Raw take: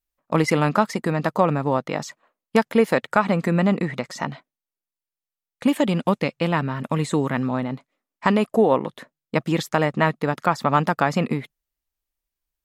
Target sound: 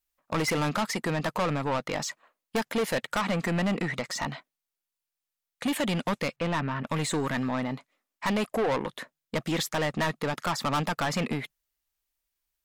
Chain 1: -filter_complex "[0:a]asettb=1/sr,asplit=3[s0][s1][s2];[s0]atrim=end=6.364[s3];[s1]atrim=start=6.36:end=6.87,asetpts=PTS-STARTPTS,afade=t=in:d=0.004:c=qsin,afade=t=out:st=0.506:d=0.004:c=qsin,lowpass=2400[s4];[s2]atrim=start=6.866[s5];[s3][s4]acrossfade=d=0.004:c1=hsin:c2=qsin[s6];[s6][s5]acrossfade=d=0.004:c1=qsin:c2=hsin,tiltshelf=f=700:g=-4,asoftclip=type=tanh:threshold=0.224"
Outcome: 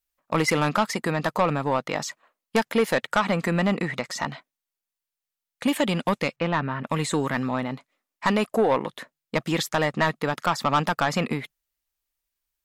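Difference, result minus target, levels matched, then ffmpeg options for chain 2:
saturation: distortion -7 dB
-filter_complex "[0:a]asettb=1/sr,asplit=3[s0][s1][s2];[s0]atrim=end=6.364[s3];[s1]atrim=start=6.36:end=6.87,asetpts=PTS-STARTPTS,afade=t=in:d=0.004:c=qsin,afade=t=out:st=0.506:d=0.004:c=qsin,lowpass=2400[s4];[s2]atrim=start=6.866[s5];[s3][s4]acrossfade=d=0.004:c1=hsin:c2=qsin[s6];[s6][s5]acrossfade=d=0.004:c1=qsin:c2=hsin,tiltshelf=f=700:g=-4,asoftclip=type=tanh:threshold=0.0708"

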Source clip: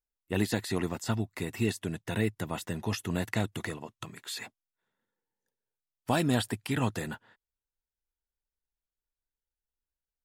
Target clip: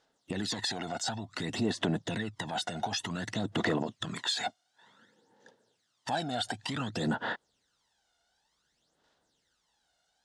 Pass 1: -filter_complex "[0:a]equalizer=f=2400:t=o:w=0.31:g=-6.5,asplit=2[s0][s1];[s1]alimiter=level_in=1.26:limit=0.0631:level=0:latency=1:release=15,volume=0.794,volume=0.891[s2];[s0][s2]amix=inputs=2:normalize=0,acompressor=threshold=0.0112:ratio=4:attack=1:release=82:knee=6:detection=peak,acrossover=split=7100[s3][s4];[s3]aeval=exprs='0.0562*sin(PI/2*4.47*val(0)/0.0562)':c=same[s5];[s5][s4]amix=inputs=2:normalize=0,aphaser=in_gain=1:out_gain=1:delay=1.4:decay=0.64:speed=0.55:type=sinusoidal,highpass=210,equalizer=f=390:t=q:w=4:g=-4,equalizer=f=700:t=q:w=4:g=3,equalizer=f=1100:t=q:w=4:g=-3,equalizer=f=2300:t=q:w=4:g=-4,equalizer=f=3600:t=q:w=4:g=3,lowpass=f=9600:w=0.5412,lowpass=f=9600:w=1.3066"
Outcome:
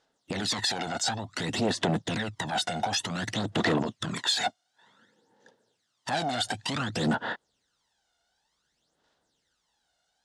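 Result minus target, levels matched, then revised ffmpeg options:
compression: peak gain reduction -7 dB
-filter_complex "[0:a]equalizer=f=2400:t=o:w=0.31:g=-6.5,asplit=2[s0][s1];[s1]alimiter=level_in=1.26:limit=0.0631:level=0:latency=1:release=15,volume=0.794,volume=0.891[s2];[s0][s2]amix=inputs=2:normalize=0,acompressor=threshold=0.00376:ratio=4:attack=1:release=82:knee=6:detection=peak,acrossover=split=7100[s3][s4];[s3]aeval=exprs='0.0562*sin(PI/2*4.47*val(0)/0.0562)':c=same[s5];[s5][s4]amix=inputs=2:normalize=0,aphaser=in_gain=1:out_gain=1:delay=1.4:decay=0.64:speed=0.55:type=sinusoidal,highpass=210,equalizer=f=390:t=q:w=4:g=-4,equalizer=f=700:t=q:w=4:g=3,equalizer=f=1100:t=q:w=4:g=-3,equalizer=f=2300:t=q:w=4:g=-4,equalizer=f=3600:t=q:w=4:g=3,lowpass=f=9600:w=0.5412,lowpass=f=9600:w=1.3066"

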